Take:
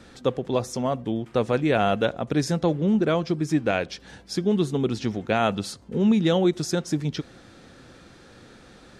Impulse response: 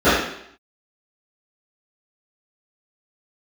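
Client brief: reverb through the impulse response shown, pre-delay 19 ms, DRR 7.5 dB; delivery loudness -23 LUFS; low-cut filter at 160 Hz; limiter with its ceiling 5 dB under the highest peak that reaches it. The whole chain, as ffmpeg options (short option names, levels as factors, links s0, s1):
-filter_complex "[0:a]highpass=160,alimiter=limit=0.211:level=0:latency=1,asplit=2[s0][s1];[1:a]atrim=start_sample=2205,adelay=19[s2];[s1][s2]afir=irnorm=-1:irlink=0,volume=0.0188[s3];[s0][s3]amix=inputs=2:normalize=0,volume=1.19"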